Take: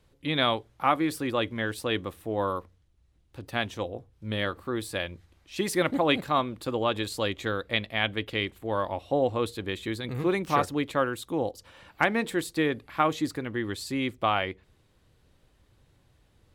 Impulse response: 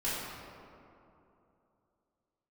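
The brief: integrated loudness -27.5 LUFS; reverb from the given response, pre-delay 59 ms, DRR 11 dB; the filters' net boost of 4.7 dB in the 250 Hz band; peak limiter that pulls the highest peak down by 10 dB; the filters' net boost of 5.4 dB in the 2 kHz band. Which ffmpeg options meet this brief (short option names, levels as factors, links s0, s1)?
-filter_complex "[0:a]equalizer=f=250:t=o:g=6,equalizer=f=2000:t=o:g=6.5,alimiter=limit=0.188:level=0:latency=1,asplit=2[s0][s1];[1:a]atrim=start_sample=2205,adelay=59[s2];[s1][s2]afir=irnorm=-1:irlink=0,volume=0.126[s3];[s0][s3]amix=inputs=2:normalize=0"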